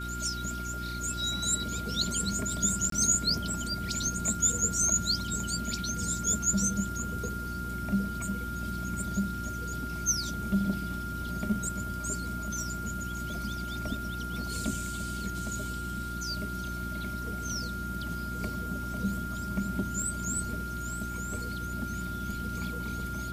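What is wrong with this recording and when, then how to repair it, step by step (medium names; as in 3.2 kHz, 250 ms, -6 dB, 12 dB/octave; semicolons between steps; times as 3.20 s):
hum 60 Hz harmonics 6 -38 dBFS
whine 1.4 kHz -37 dBFS
2.90–2.92 s: dropout 23 ms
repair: de-hum 60 Hz, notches 6; band-stop 1.4 kHz, Q 30; interpolate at 2.90 s, 23 ms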